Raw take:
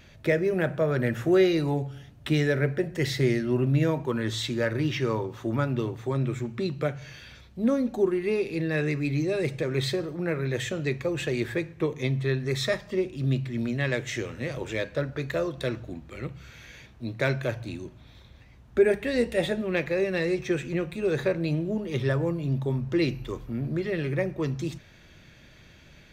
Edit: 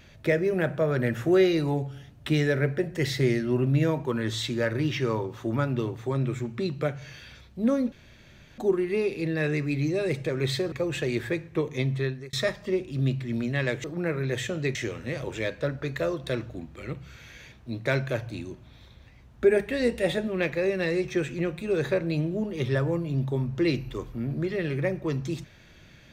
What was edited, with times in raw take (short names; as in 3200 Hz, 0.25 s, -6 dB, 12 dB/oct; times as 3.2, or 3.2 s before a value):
7.92 insert room tone 0.66 s
10.06–10.97 move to 14.09
12.23–12.58 fade out